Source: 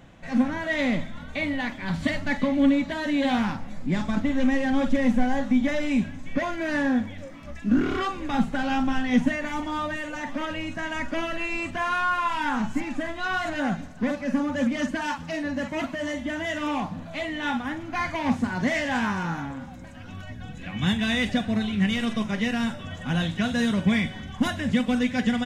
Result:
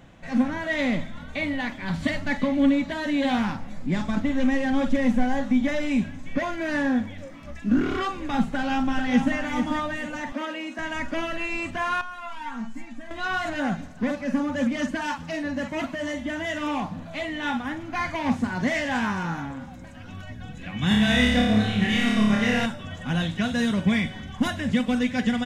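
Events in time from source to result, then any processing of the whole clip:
0:08.52–0:09.36: delay throw 440 ms, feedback 25%, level −6.5 dB
0:10.32–0:10.79: elliptic high-pass filter 220 Hz
0:12.01–0:13.11: tuned comb filter 230 Hz, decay 0.17 s, mix 90%
0:20.88–0:22.66: flutter between parallel walls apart 4.9 metres, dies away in 0.98 s

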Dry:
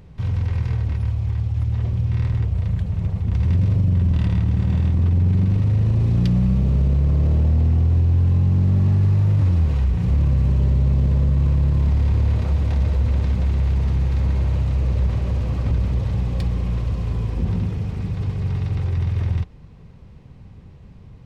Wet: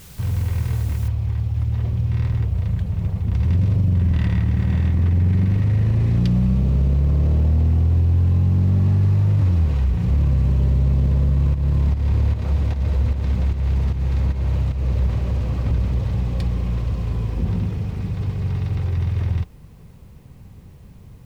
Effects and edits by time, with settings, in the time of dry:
0:01.08: noise floor change −46 dB −66 dB
0:04.01–0:06.18: parametric band 1,900 Hz +7 dB 0.58 octaves
0:11.54–0:14.98: fake sidechain pumping 151 BPM, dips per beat 1, −9 dB, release 234 ms

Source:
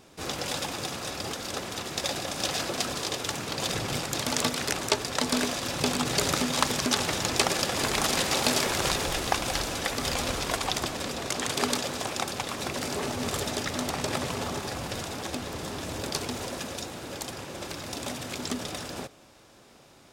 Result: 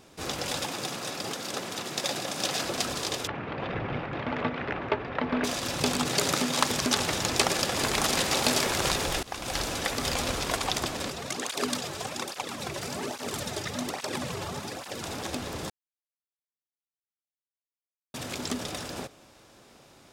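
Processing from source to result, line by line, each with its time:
0:00.65–0:02.65: high-pass filter 120 Hz 24 dB per octave
0:03.27–0:05.44: low-pass filter 2,400 Hz 24 dB per octave
0:06.07–0:06.71: high-pass filter 120 Hz
0:09.23–0:09.63: fade in, from −22.5 dB
0:11.10–0:15.03: through-zero flanger with one copy inverted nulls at 1.2 Hz, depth 4.4 ms
0:15.70–0:18.14: silence

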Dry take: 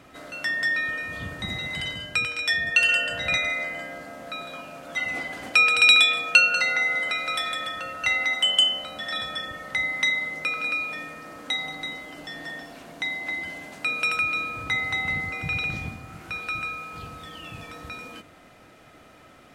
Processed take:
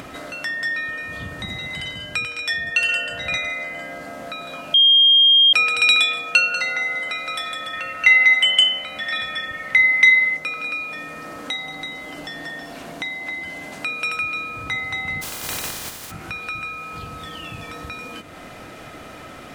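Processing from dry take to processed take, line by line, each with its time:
0:04.74–0:05.53: beep over 3,220 Hz −9.5 dBFS
0:07.73–0:10.37: parametric band 2,200 Hz +14 dB 0.56 octaves
0:15.21–0:16.10: compressing power law on the bin magnitudes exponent 0.17
whole clip: upward compression, threshold −26 dBFS

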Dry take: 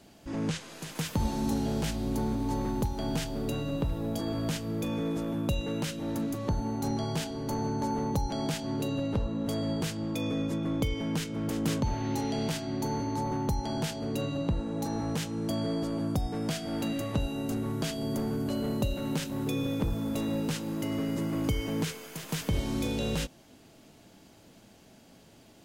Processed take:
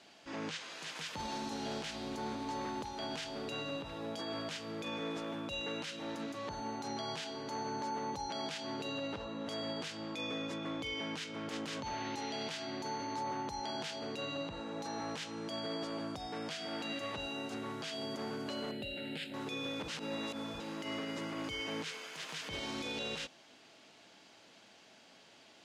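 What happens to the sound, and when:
0:18.71–0:19.34: phaser with its sweep stopped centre 2,600 Hz, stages 4
0:19.88–0:20.60: reverse
whole clip: high-pass filter 1,400 Hz 6 dB per octave; brickwall limiter −34 dBFS; low-pass filter 4,800 Hz 12 dB per octave; level +4.5 dB

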